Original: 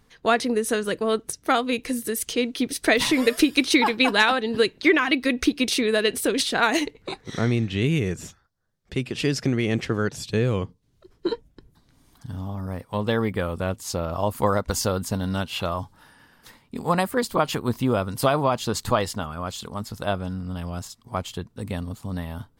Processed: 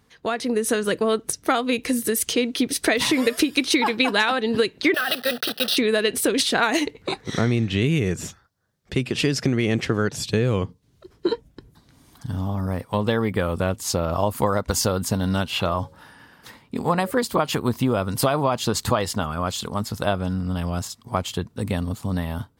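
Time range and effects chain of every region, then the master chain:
4.94–5.77 block floating point 3-bit + HPF 150 Hz 24 dB/oct + fixed phaser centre 1500 Hz, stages 8
15.51–17.11 bell 12000 Hz -4.5 dB 2 oct + de-hum 78.68 Hz, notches 7
whole clip: compressor 3:1, threshold -24 dBFS; HPF 53 Hz; AGC gain up to 6 dB

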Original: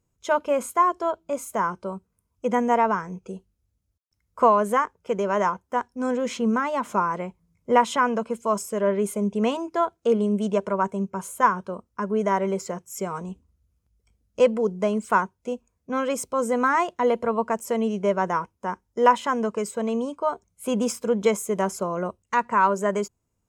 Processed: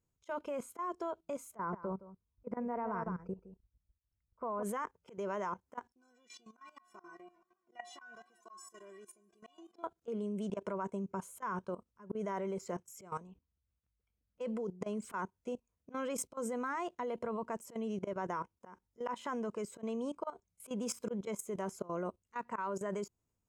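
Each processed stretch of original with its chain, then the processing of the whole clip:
1.56–4.63 running mean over 13 samples + low shelf 83 Hz +12 dB + echo 0.166 s -11 dB
5.92–9.84 bell 5100 Hz +5.5 dB 1.7 oct + metallic resonator 350 Hz, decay 0.28 s, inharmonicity 0.008 + warbling echo 0.142 s, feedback 72%, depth 119 cents, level -23.5 dB
13.27–14.41 LPF 2300 Hz + tilt shelf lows -5 dB, about 1300 Hz
whole clip: dynamic EQ 340 Hz, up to +4 dB, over -39 dBFS, Q 3.4; auto swell 0.13 s; level quantiser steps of 16 dB; gain -5 dB

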